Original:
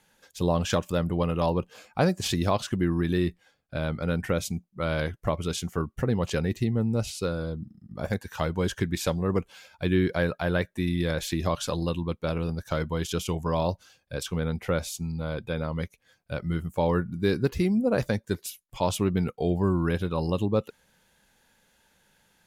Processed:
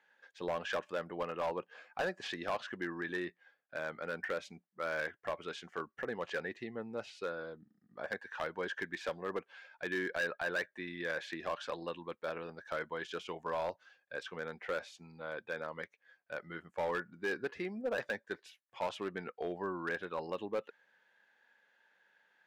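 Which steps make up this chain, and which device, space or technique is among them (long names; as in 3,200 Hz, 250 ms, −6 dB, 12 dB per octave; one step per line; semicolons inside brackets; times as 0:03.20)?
megaphone (band-pass filter 450–2,900 Hz; parametric band 1,700 Hz +9.5 dB 0.37 octaves; hard clipping −22.5 dBFS, distortion −13 dB)
level −6.5 dB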